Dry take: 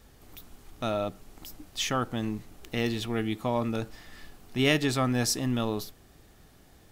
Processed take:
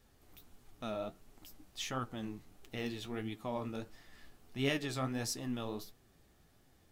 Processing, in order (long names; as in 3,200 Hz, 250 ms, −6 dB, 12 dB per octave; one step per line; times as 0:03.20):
flanger 1.5 Hz, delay 6.9 ms, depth 9.7 ms, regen +43%
level −6.5 dB